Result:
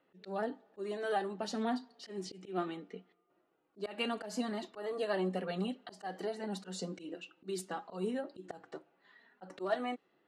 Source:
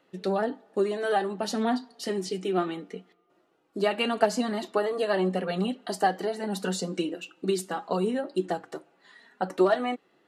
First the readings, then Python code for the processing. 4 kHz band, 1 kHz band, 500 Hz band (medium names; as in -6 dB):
-9.5 dB, -11.0 dB, -11.0 dB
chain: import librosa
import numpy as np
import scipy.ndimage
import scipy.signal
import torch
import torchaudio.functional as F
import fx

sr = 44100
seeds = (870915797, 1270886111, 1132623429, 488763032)

y = fx.env_lowpass(x, sr, base_hz=3000.0, full_db=-22.0)
y = fx.auto_swell(y, sr, attack_ms=145.0)
y = y * 10.0 ** (-8.0 / 20.0)